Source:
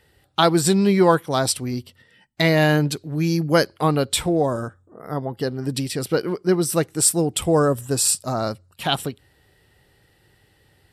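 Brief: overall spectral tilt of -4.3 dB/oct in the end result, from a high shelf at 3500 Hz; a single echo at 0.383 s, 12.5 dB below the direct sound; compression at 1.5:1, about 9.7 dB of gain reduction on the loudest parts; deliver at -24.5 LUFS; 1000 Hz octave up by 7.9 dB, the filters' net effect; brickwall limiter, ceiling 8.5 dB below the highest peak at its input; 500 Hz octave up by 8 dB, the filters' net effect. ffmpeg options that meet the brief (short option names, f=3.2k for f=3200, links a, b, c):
-af "equalizer=f=500:t=o:g=8,equalizer=f=1k:t=o:g=7,highshelf=f=3.5k:g=5,acompressor=threshold=-32dB:ratio=1.5,alimiter=limit=-13.5dB:level=0:latency=1,aecho=1:1:383:0.237,volume=0.5dB"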